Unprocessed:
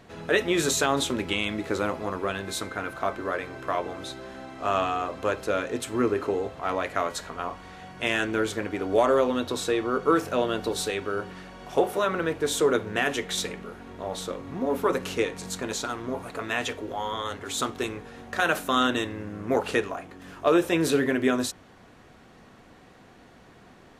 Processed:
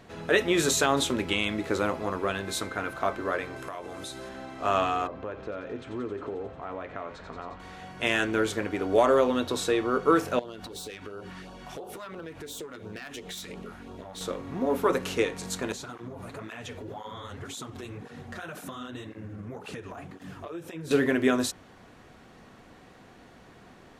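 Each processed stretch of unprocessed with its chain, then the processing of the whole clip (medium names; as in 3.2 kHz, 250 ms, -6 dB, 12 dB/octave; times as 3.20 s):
3.56–4.29 s: peaking EQ 10 kHz +9.5 dB 1.3 oct + compression 4:1, threshold -35 dBFS
5.07–7.60 s: compression 3:1, threshold -31 dBFS + tape spacing loss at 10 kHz 33 dB + feedback echo behind a high-pass 89 ms, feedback 81%, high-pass 2.3 kHz, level -6.5 dB
10.39–14.21 s: self-modulated delay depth 0.085 ms + compression 20:1, threshold -34 dBFS + LFO notch sine 2.9 Hz 390–2100 Hz
15.72–20.91 s: peaking EQ 130 Hz +9.5 dB 1.5 oct + compression 12:1, threshold -32 dBFS + cancelling through-zero flanger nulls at 1.9 Hz, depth 7.6 ms
whole clip: none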